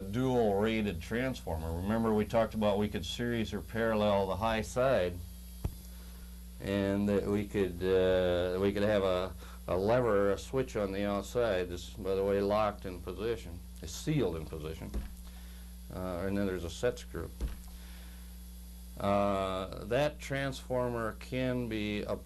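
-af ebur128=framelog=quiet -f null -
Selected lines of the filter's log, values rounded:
Integrated loudness:
  I:         -32.8 LUFS
  Threshold: -43.4 LUFS
Loudness range:
  LRA:         7.6 LU
  Threshold: -53.4 LUFS
  LRA low:   -38.5 LUFS
  LRA high:  -31.0 LUFS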